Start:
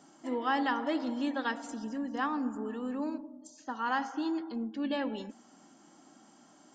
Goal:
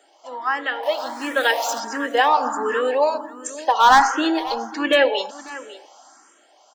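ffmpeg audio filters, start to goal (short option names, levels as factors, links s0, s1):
-filter_complex "[0:a]asettb=1/sr,asplit=3[s0][s1][s2];[s0]atrim=end=0.834[s3];[s1]atrim=start=0.83:end=1.8,asetpts=PTS-STARTPTS,afade=t=in:d=0.004:c=qsin,afade=t=out:st=0.966:d=0.004:c=qsin,aeval=exprs='val(0)+0.5*0.00708*sgn(val(0))':c=same[s4];[s2]atrim=start=1.796[s5];[s3][s4]acrossfade=d=0.004:c1=hsin:c2=qsin[s6];[s6][s5]acrossfade=d=0.004:c1=qsin:c2=hsin,highpass=f=460:w=0.5412,highpass=f=460:w=1.3066,dynaudnorm=f=270:g=11:m=6.68,asplit=3[s7][s8][s9];[s7]afade=t=out:st=3.69:d=0.02[s10];[s8]asoftclip=type=hard:threshold=0.158,afade=t=in:st=3.69:d=0.02,afade=t=out:st=4.94:d=0.02[s11];[s9]afade=t=in:st=4.94:d=0.02[s12];[s10][s11][s12]amix=inputs=3:normalize=0,aecho=1:1:548:0.158,alimiter=level_in=2.99:limit=0.891:release=50:level=0:latency=1,asplit=2[s13][s14];[s14]afreqshift=1.4[s15];[s13][s15]amix=inputs=2:normalize=1"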